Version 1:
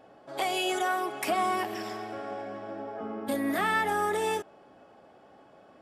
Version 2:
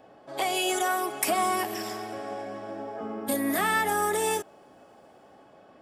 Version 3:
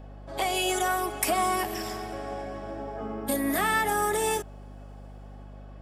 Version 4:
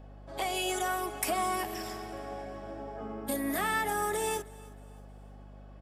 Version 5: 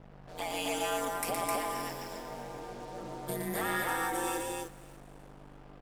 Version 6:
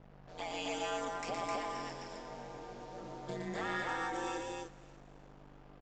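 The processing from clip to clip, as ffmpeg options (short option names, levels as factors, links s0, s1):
-filter_complex "[0:a]bandreject=f=1400:w=26,acrossover=split=710|6200[s0][s1][s2];[s2]dynaudnorm=f=110:g=11:m=3.35[s3];[s0][s1][s3]amix=inputs=3:normalize=0,volume=1.19"
-af "aeval=exprs='val(0)+0.00708*(sin(2*PI*50*n/s)+sin(2*PI*2*50*n/s)/2+sin(2*PI*3*50*n/s)/3+sin(2*PI*4*50*n/s)/4+sin(2*PI*5*50*n/s)/5)':c=same"
-af "aecho=1:1:315|630|945:0.0794|0.0286|0.0103,volume=0.562"
-af "acrusher=bits=7:mix=0:aa=0.5,aeval=exprs='val(0)*sin(2*PI*86*n/s)':c=same,aecho=1:1:116.6|259.5:0.562|0.794,volume=0.841"
-af "aresample=16000,aresample=44100,volume=0.596"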